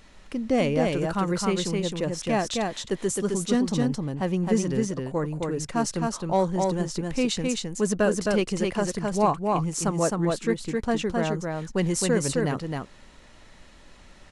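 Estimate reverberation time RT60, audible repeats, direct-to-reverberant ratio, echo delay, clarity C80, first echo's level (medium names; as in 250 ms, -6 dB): no reverb, 1, no reverb, 263 ms, no reverb, -3.0 dB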